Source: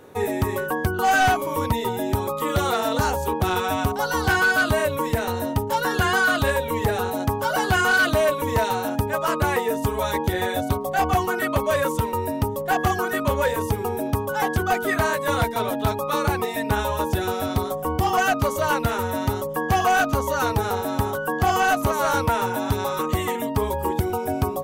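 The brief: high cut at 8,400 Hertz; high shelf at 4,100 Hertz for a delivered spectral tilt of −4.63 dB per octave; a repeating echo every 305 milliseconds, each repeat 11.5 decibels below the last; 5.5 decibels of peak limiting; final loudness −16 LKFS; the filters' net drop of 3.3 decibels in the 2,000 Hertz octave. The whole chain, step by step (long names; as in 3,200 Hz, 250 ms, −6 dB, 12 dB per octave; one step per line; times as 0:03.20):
low-pass filter 8,400 Hz
parametric band 2,000 Hz −6.5 dB
high-shelf EQ 4,100 Hz +6.5 dB
brickwall limiter −17.5 dBFS
repeating echo 305 ms, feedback 27%, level −11.5 dB
level +9.5 dB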